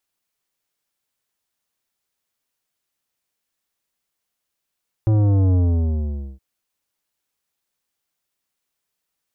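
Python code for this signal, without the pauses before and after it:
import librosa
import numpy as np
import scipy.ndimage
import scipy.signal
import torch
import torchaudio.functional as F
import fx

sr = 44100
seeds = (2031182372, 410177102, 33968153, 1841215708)

y = fx.sub_drop(sr, level_db=-14.5, start_hz=110.0, length_s=1.32, drive_db=12.0, fade_s=0.85, end_hz=65.0)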